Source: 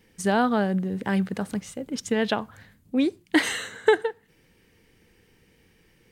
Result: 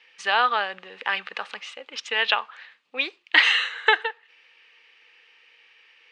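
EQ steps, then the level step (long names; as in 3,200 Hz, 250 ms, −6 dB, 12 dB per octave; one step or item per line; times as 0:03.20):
loudspeaker in its box 490–3,600 Hz, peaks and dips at 490 Hz +6 dB, 860 Hz +7 dB, 1,200 Hz +10 dB, 1,800 Hz +4 dB, 2,600 Hz +9 dB
spectral tilt +4 dB per octave
high-shelf EQ 2,500 Hz +11 dB
−4.5 dB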